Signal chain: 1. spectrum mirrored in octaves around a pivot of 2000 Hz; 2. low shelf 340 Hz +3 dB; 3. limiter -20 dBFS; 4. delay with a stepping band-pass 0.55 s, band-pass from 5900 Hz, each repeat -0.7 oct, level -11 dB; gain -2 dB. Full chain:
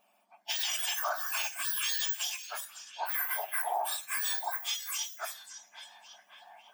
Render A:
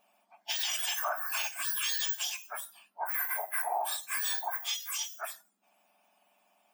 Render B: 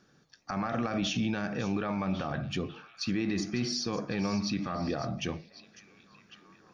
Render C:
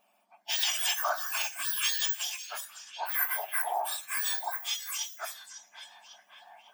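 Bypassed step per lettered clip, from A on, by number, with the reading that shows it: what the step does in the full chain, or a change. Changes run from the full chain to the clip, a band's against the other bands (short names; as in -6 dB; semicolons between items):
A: 4, echo-to-direct -16.5 dB to none; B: 1, 500 Hz band +11.5 dB; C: 3, crest factor change +6.5 dB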